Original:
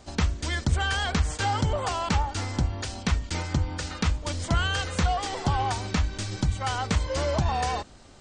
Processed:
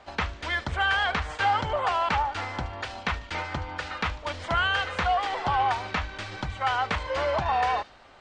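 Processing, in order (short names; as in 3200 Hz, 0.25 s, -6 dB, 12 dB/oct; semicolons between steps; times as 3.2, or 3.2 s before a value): three-band isolator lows -15 dB, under 550 Hz, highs -23 dB, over 3300 Hz; thin delay 74 ms, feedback 46%, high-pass 4500 Hz, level -10 dB; gain +5.5 dB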